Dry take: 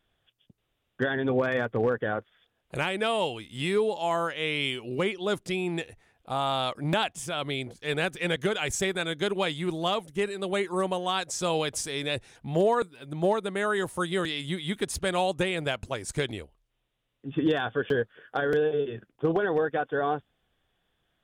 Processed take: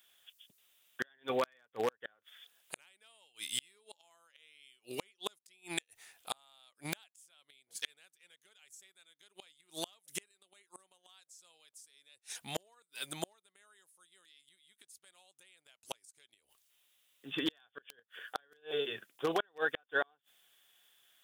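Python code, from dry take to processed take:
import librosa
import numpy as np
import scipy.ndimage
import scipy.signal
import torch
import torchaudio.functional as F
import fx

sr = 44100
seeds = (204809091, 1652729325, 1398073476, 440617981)

y = np.diff(x, prepend=0.0)
y = fx.gate_flip(y, sr, shuts_db=-36.0, range_db=-39)
y = y * 10.0 ** (16.5 / 20.0)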